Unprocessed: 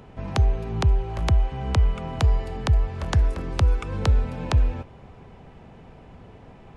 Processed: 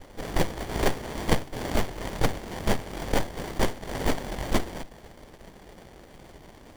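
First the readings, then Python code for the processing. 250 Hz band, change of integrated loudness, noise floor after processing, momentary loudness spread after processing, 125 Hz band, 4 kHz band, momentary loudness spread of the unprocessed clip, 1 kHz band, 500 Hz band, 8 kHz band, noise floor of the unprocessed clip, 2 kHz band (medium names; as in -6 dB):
+2.0 dB, -6.0 dB, -50 dBFS, 21 LU, -11.5 dB, +1.5 dB, 3 LU, +1.0 dB, +3.0 dB, no reading, -47 dBFS, +3.5 dB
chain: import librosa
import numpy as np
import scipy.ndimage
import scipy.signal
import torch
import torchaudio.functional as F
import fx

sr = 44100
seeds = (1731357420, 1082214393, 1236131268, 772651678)

y = fx.env_lowpass_down(x, sr, base_hz=400.0, full_db=-17.0)
y = fx.noise_vocoder(y, sr, seeds[0], bands=1)
y = fx.running_max(y, sr, window=33)
y = F.gain(torch.from_numpy(y), 4.0).numpy()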